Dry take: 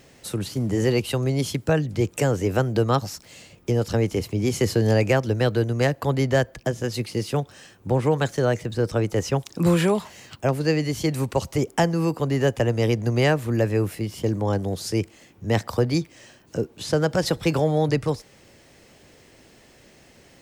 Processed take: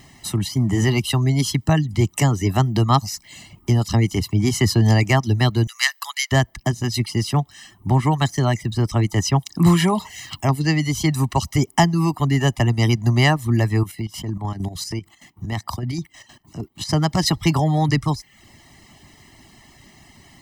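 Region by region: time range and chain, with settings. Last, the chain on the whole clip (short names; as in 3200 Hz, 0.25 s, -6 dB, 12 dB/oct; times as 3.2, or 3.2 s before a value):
5.67–6.32 HPF 1300 Hz 24 dB/oct + high shelf 2400 Hz +8.5 dB
9.9–10.5 de-hum 62.02 Hz, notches 14 + mismatched tape noise reduction encoder only
13.83–16.89 chopper 6.5 Hz, depth 60%, duty 55% + compressor 5:1, threshold -26 dBFS
whole clip: reverb removal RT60 0.5 s; dynamic EQ 5500 Hz, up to +4 dB, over -47 dBFS, Q 2.6; comb 1 ms, depth 92%; gain +2.5 dB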